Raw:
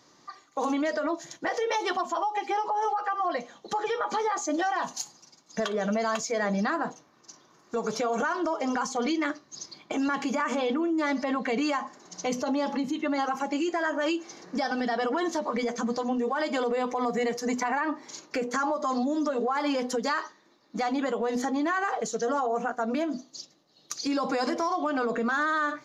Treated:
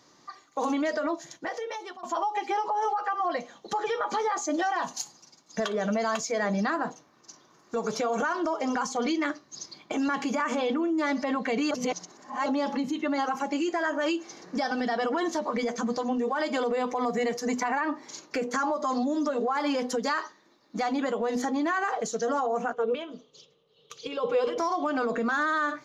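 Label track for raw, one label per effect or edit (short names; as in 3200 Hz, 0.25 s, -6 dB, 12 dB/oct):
1.070000	2.030000	fade out, to -19.5 dB
11.710000	12.460000	reverse
22.730000	24.580000	EQ curve 160 Hz 0 dB, 310 Hz -15 dB, 450 Hz +13 dB, 650 Hz -10 dB, 1200 Hz -2 dB, 1800 Hz -10 dB, 3200 Hz +7 dB, 4500 Hz -14 dB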